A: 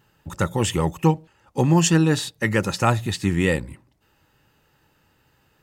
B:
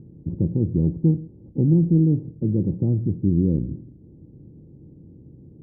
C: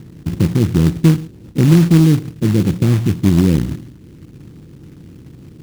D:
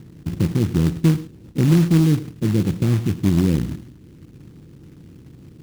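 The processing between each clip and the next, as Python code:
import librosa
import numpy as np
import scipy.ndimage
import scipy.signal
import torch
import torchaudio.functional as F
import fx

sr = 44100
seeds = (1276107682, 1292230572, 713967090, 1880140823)

y1 = fx.bin_compress(x, sr, power=0.6)
y1 = scipy.signal.sosfilt(scipy.signal.cheby2(4, 70, 1500.0, 'lowpass', fs=sr, output='sos'), y1)
y2 = fx.quant_float(y1, sr, bits=2)
y2 = y2 * 10.0 ** (7.5 / 20.0)
y3 = y2 + 10.0 ** (-18.5 / 20.0) * np.pad(y2, (int(102 * sr / 1000.0), 0))[:len(y2)]
y3 = y3 * 10.0 ** (-5.0 / 20.0)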